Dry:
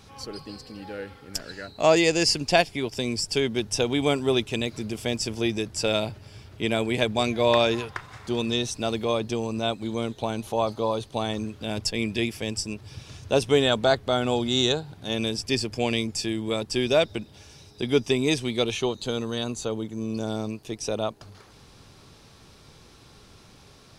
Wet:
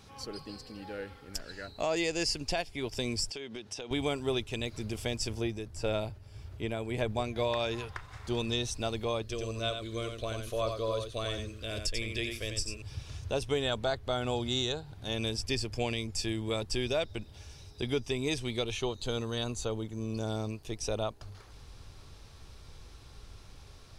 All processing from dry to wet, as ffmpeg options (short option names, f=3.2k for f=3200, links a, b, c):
-filter_complex "[0:a]asettb=1/sr,asplit=3[a][b][c];[a]atrim=end=3.304[d];[b]atrim=start=3.3:end=3.91,asetpts=PTS-STARTPTS,afade=t=in:d=0.004:c=qsin,afade=t=out:st=0.606:d=0.004:c=qsin,highpass=190,lowpass=4k,aemphasis=mode=production:type=50fm,acompressor=threshold=-31dB:ratio=16:attack=3.2:release=140:knee=1:detection=peak[e];[c]atrim=start=3.906[f];[d][e]acrossfade=d=0.004:c1=hsin:c2=qsin[g];[g][f]acrossfade=d=0.004:c1=qsin:c2=hsin,asettb=1/sr,asplit=3[h][i][j];[h]atrim=end=5.334[k];[i]atrim=start=5.33:end=7.36,asetpts=PTS-STARTPTS,afade=t=in:d=0.004:c=qsin,afade=t=out:st=2.026:d=0.004:c=qsin,acrossover=split=2700[l][m];[m]acompressor=threshold=-34dB:ratio=4:attack=1:release=60[n];[l][n]amix=inputs=2:normalize=0,equalizer=f=3.3k:t=o:w=2.6:g=-4,tremolo=f=1.7:d=0.47[o];[j]atrim=start=7.356[p];[k][o]acrossfade=d=0.004:c1=hsin:c2=qsin[q];[q][p]acrossfade=d=0.004:c1=qsin:c2=hsin,asettb=1/sr,asplit=3[r][s][t];[r]atrim=end=9.224[u];[s]atrim=start=9.22:end=12.82,asetpts=PTS-STARTPTS,afade=t=in:d=0.004:c=qsin,afade=t=out:st=3.596:d=0.004:c=qsin,asuperstop=centerf=850:order=4:qfactor=2.3,equalizer=f=180:w=1.1:g=-10.5,aecho=1:1:89:0.501,atrim=end_sample=158760[v];[t]atrim=start=12.816[w];[u][v]acrossfade=d=0.004:c1=hsin:c2=qsin[x];[x][w]acrossfade=d=0.004:c1=qsin:c2=hsin,asubboost=boost=6:cutoff=72,alimiter=limit=-16dB:level=0:latency=1:release=325,volume=-4dB"